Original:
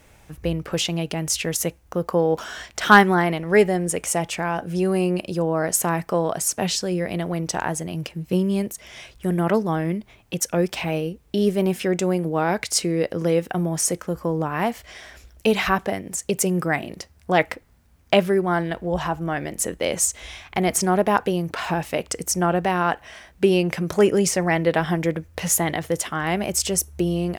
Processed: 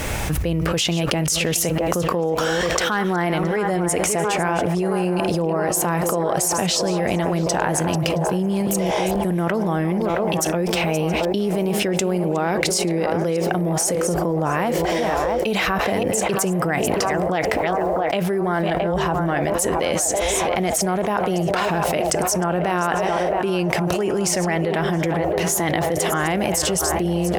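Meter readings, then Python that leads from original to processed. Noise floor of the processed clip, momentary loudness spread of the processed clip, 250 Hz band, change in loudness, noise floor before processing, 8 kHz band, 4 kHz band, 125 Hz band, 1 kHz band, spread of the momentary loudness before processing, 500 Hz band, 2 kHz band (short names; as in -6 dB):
-23 dBFS, 2 LU, +1.5 dB, +1.5 dB, -54 dBFS, +2.0 dB, +3.5 dB, +2.5 dB, +2.5 dB, 9 LU, +2.0 dB, +0.5 dB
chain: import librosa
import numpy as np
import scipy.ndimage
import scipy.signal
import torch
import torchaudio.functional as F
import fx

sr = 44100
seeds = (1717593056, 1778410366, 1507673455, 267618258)

y = fx.reverse_delay(x, sr, ms=297, wet_db=-13)
y = fx.echo_banded(y, sr, ms=670, feedback_pct=85, hz=670.0, wet_db=-10)
y = fx.env_flatten(y, sr, amount_pct=100)
y = y * 10.0 ** (-12.5 / 20.0)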